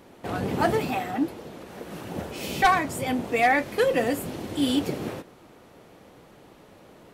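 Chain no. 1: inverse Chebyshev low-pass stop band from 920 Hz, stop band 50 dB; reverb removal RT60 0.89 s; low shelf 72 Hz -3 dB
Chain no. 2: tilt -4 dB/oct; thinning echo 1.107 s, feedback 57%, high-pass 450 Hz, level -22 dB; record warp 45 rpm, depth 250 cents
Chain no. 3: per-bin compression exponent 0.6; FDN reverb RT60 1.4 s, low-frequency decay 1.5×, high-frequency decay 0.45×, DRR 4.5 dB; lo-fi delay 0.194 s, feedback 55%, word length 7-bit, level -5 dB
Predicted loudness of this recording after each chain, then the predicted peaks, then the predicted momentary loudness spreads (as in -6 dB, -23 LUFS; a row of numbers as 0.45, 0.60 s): -33.5, -21.5, -19.0 LUFS; -17.0, -2.5, -4.0 dBFS; 14, 13, 16 LU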